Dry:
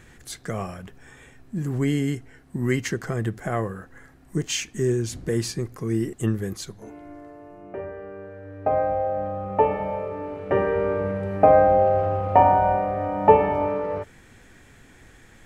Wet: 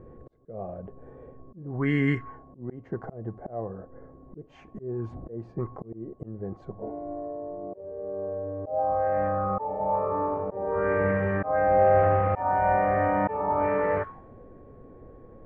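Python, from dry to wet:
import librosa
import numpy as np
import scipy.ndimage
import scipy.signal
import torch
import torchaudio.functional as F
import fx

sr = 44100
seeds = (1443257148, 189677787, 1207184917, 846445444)

y = x + 10.0 ** (-51.0 / 20.0) * np.sin(2.0 * np.pi * 1100.0 * np.arange(len(x)) / sr)
y = fx.auto_swell(y, sr, attack_ms=590.0)
y = fx.envelope_lowpass(y, sr, base_hz=460.0, top_hz=1900.0, q=3.4, full_db=-24.0, direction='up')
y = F.gain(torch.from_numpy(y), 1.5).numpy()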